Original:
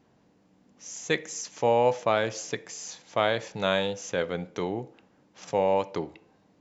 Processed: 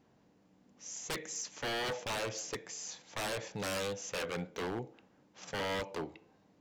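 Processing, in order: 4–4.71 dynamic EQ 1600 Hz, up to +5 dB, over -42 dBFS, Q 0.86; wavefolder -26.5 dBFS; gain -4 dB

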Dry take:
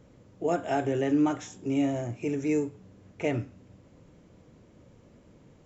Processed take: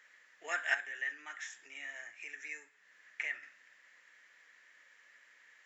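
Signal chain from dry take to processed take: 0.74–3.43 compressor 2:1, threshold -43 dBFS, peak gain reduction 12.5 dB; resonant high-pass 1800 Hz, resonance Q 8.9

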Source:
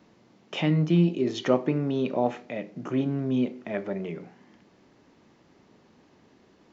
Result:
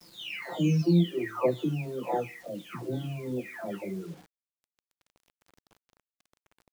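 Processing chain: spectral delay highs early, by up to 0.851 s; expander -60 dBFS; reverb removal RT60 1.1 s; flange 0.45 Hz, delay 5.7 ms, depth 4.4 ms, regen +80%; bit-crush 10-bit; gain +5.5 dB

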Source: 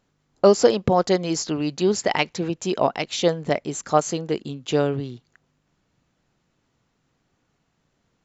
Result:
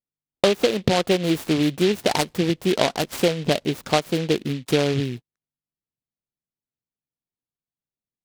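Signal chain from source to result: gate -38 dBFS, range -36 dB; LPF 2600 Hz 6 dB/oct; high shelf 2000 Hz -7.5 dB; compressor 6:1, threshold -22 dBFS, peak gain reduction 11.5 dB; noise-modulated delay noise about 2800 Hz, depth 0.11 ms; gain +6.5 dB

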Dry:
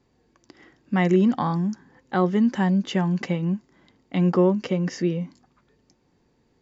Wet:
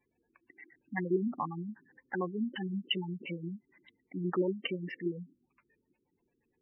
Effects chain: LFO low-pass square 8.6 Hz 350–2600 Hz; spectral gate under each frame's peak -15 dB strong; tilt shelf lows -10 dB, about 930 Hz; gain -8 dB

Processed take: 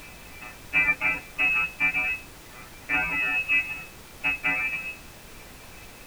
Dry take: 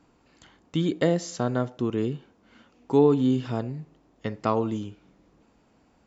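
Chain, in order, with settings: half-waves squared off; robotiser 115 Hz; inverted band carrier 2700 Hz; limiter -9 dBFS, peak gain reduction 6 dB; compressor 2.5:1, threshold -36 dBFS, peak gain reduction 12 dB; FDN reverb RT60 0.3 s, low-frequency decay 1.5×, high-frequency decay 1×, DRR -6.5 dB; reverb removal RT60 1.2 s; added noise pink -49 dBFS; gain +3.5 dB

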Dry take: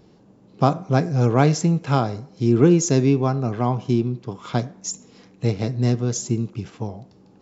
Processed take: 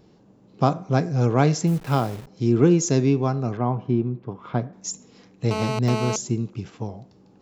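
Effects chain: 1.67–2.27 level-crossing sampler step -34.5 dBFS; 3.57–4.73 LPF 1900 Hz 12 dB/oct; 5.51–6.16 GSM buzz -25 dBFS; gain -2 dB

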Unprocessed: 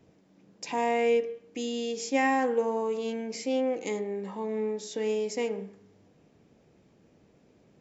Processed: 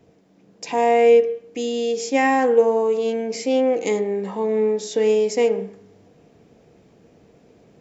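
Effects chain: vocal rider 2 s; small resonant body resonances 460/690 Hz, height 6 dB; gain +6 dB

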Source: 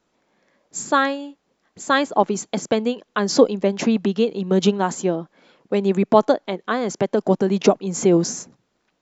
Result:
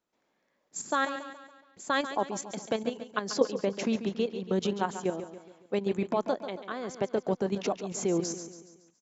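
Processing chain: low shelf 240 Hz -5 dB; level quantiser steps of 10 dB; on a send: feedback echo 0.14 s, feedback 48%, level -11 dB; on the sum: gain -6 dB

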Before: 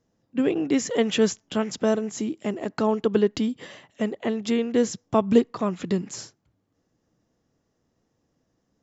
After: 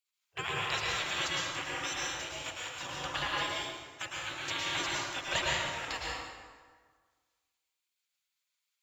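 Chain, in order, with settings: spectral gate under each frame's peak -30 dB weak; in parallel at -4.5 dB: crossover distortion -55.5 dBFS; on the sum: plate-style reverb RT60 1.6 s, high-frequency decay 0.65×, pre-delay 95 ms, DRR -4.5 dB; gain +3 dB

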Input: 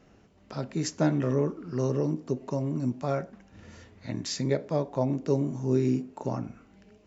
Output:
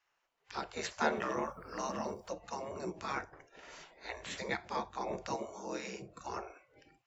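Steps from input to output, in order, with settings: spectral gate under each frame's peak -15 dB weak; 1.15–2.29 added noise white -80 dBFS; 5.36–6.02 low shelf 360 Hz -11 dB; spectral noise reduction 16 dB; high shelf 5900 Hz -6 dB; gain +5 dB

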